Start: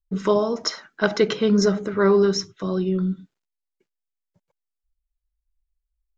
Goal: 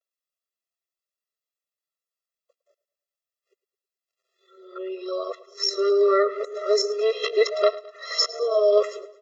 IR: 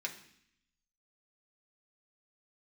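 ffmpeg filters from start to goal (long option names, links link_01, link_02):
-filter_complex "[0:a]areverse,aecho=1:1:1.5:0.51,asplit=2[link_01][link_02];[link_02]acompressor=threshold=-33dB:ratio=6,volume=-1dB[link_03];[link_01][link_03]amix=inputs=2:normalize=0,atempo=0.67,asplit=2[link_04][link_05];[link_05]aecho=0:1:107|214|321|428:0.119|0.057|0.0274|0.0131[link_06];[link_04][link_06]amix=inputs=2:normalize=0,afftfilt=real='re*eq(mod(floor(b*sr/1024/350),2),1)':imag='im*eq(mod(floor(b*sr/1024/350),2),1)':win_size=1024:overlap=0.75"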